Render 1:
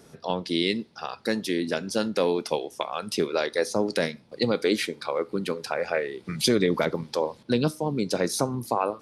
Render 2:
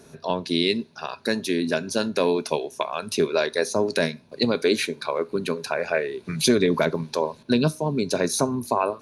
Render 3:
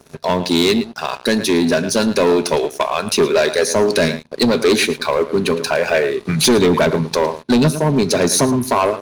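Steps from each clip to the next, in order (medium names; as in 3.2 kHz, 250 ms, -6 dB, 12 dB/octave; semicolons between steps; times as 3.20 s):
rippled EQ curve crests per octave 1.5, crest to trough 7 dB; trim +2 dB
echo from a far wall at 19 m, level -16 dB; waveshaping leveller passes 3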